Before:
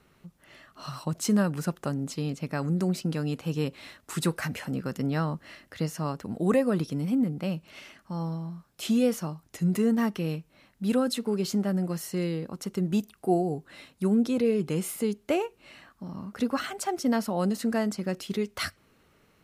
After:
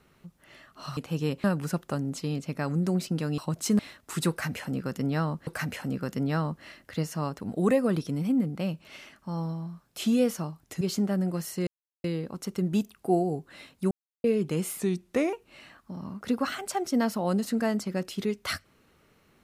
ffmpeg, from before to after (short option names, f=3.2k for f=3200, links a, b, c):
-filter_complex "[0:a]asplit=12[a][b][c][d][e][f][g][h][i][j][k][l];[a]atrim=end=0.972[m];[b]atrim=start=3.318:end=3.792[n];[c]atrim=start=1.378:end=3.322[o];[d]atrim=start=0.968:end=1.382[p];[e]atrim=start=3.788:end=5.472[q];[f]atrim=start=4.298:end=9.642[r];[g]atrim=start=11.368:end=12.23,asetpts=PTS-STARTPTS,afade=t=out:st=0.858:d=0.004:c=hsin,apad=pad_dur=0.37[s];[h]atrim=start=12.23:end=14.1,asetpts=PTS-STARTPTS,afade=t=in:d=0.004:c=hsin,afade=t=out:st=1.866:d=0.004:c=hsin[t];[i]atrim=start=14.1:end=14.43,asetpts=PTS-STARTPTS,volume=0[u];[j]atrim=start=14.43:end=14.984,asetpts=PTS-STARTPTS,afade=t=in:d=0.004:c=hsin[v];[k]atrim=start=14.98:end=15.45,asetpts=PTS-STARTPTS,asetrate=38367,aresample=44100,atrim=end_sample=23824,asetpts=PTS-STARTPTS[w];[l]atrim=start=15.446[x];[m][n]acrossfade=d=0.004:c1=hsin:c2=hsin[y];[y][o]acrossfade=d=0.004:c1=hsin:c2=hsin[z];[z][p]acrossfade=d=0.004:c1=hsin:c2=hsin[aa];[aa][q]acrossfade=d=0.004:c1=hsin:c2=hsin[ab];[ab][r]acrossfade=d=0.004:c1=hsin:c2=hsin[ac];[s][t][u][v]concat=n=4:v=0:a=1[ad];[ac][ad]acrossfade=d=0.004:c1=hsin:c2=hsin[ae];[ae][w]acrossfade=d=0.004:c1=hsin:c2=hsin[af];[af][x]acrossfade=d=0.004:c1=hsin:c2=hsin"